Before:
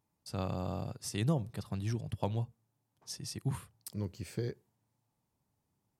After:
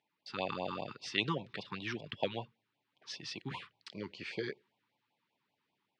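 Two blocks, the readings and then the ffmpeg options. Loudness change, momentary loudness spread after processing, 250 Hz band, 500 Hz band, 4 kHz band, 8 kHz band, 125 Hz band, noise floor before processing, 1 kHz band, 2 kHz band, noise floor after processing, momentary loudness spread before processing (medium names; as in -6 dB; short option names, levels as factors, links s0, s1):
-2.0 dB, 12 LU, -4.5 dB, +0.5 dB, +6.5 dB, -10.0 dB, -12.0 dB, -83 dBFS, +2.5 dB, +10.5 dB, -85 dBFS, 10 LU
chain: -af "lowpass=f=3500:w=0.5412,lowpass=f=3500:w=1.3066,dynaudnorm=f=150:g=5:m=1.41,highpass=220,tiltshelf=f=740:g=-8.5,afftfilt=real='re*(1-between(b*sr/1024,560*pow(1600/560,0.5+0.5*sin(2*PI*5.1*pts/sr))/1.41,560*pow(1600/560,0.5+0.5*sin(2*PI*5.1*pts/sr))*1.41))':imag='im*(1-between(b*sr/1024,560*pow(1600/560,0.5+0.5*sin(2*PI*5.1*pts/sr))/1.41,560*pow(1600/560,0.5+0.5*sin(2*PI*5.1*pts/sr))*1.41))':win_size=1024:overlap=0.75,volume=1.33"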